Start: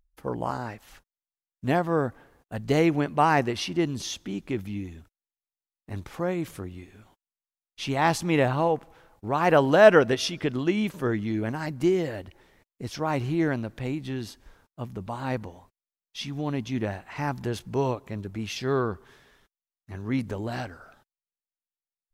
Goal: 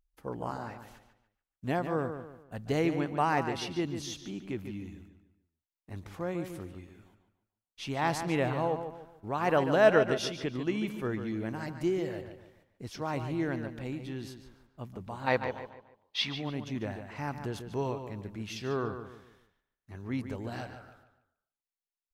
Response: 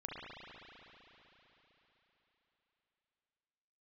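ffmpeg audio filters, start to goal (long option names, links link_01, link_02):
-filter_complex "[0:a]asplit=3[link_01][link_02][link_03];[link_01]afade=type=out:start_time=15.26:duration=0.02[link_04];[link_02]equalizer=frequency=500:width_type=o:width=1:gain=9,equalizer=frequency=1000:width_type=o:width=1:gain=10,equalizer=frequency=2000:width_type=o:width=1:gain=10,equalizer=frequency=4000:width_type=o:width=1:gain=12,equalizer=frequency=8000:width_type=o:width=1:gain=-4,afade=type=in:start_time=15.26:duration=0.02,afade=type=out:start_time=16.34:duration=0.02[link_05];[link_03]afade=type=in:start_time=16.34:duration=0.02[link_06];[link_04][link_05][link_06]amix=inputs=3:normalize=0,asplit=2[link_07][link_08];[link_08]adelay=145,lowpass=frequency=4200:poles=1,volume=-8.5dB,asplit=2[link_09][link_10];[link_10]adelay=145,lowpass=frequency=4200:poles=1,volume=0.36,asplit=2[link_11][link_12];[link_12]adelay=145,lowpass=frequency=4200:poles=1,volume=0.36,asplit=2[link_13][link_14];[link_14]adelay=145,lowpass=frequency=4200:poles=1,volume=0.36[link_15];[link_09][link_11][link_13][link_15]amix=inputs=4:normalize=0[link_16];[link_07][link_16]amix=inputs=2:normalize=0,volume=-7dB"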